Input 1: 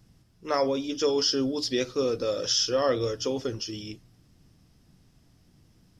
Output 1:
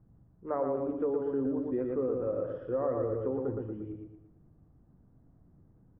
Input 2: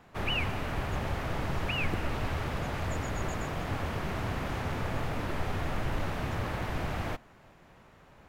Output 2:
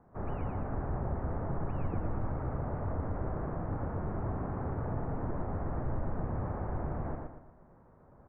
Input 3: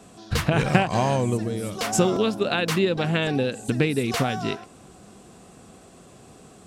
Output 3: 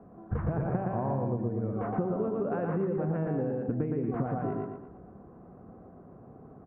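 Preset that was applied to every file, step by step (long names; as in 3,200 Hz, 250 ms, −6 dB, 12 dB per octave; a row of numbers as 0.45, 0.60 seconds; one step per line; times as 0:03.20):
Bessel low-pass filter 880 Hz, order 6
on a send: repeating echo 116 ms, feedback 39%, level −3.5 dB
on the sum: downward compressor, threshold −24 dBFS
level −2.5 dB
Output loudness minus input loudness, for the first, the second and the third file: −6.0, −3.0, −8.0 LU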